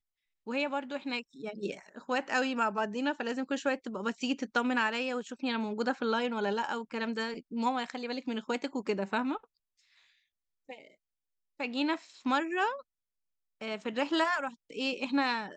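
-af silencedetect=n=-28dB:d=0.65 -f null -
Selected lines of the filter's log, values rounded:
silence_start: 9.36
silence_end: 11.60 | silence_duration: 2.25
silence_start: 12.70
silence_end: 13.68 | silence_duration: 0.98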